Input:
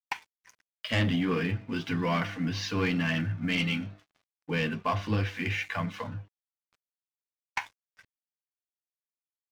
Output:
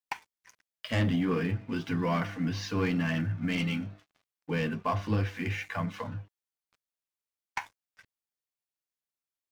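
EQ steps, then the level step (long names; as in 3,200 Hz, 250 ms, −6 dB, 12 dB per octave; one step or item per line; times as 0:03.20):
dynamic equaliser 3,100 Hz, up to −6 dB, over −45 dBFS, Q 0.75
0.0 dB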